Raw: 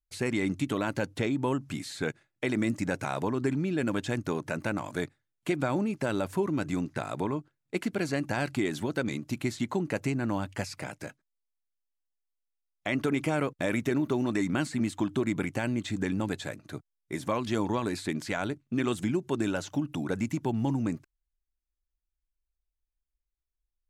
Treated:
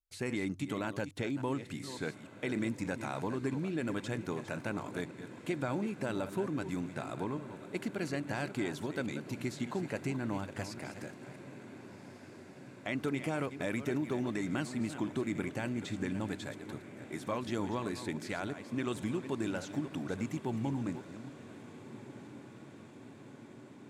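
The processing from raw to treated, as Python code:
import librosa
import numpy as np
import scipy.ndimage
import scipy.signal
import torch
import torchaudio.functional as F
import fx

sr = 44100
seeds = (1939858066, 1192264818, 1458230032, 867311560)

y = fx.reverse_delay(x, sr, ms=284, wet_db=-11.0)
y = fx.echo_diffused(y, sr, ms=1510, feedback_pct=72, wet_db=-15.5)
y = y * 10.0 ** (-6.5 / 20.0)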